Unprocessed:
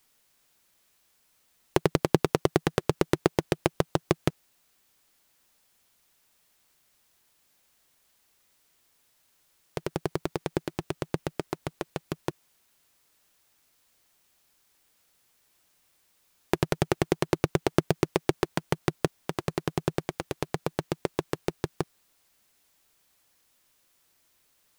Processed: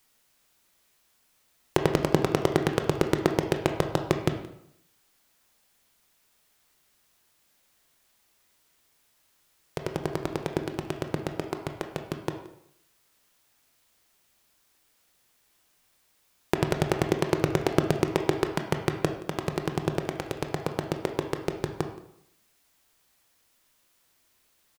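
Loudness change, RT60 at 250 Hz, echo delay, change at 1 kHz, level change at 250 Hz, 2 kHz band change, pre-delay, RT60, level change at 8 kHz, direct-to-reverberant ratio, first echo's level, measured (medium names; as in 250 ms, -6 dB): +1.0 dB, 0.75 s, 174 ms, +1.5 dB, +1.5 dB, +1.0 dB, 18 ms, 0.75 s, 0.0 dB, 5.0 dB, -20.5 dB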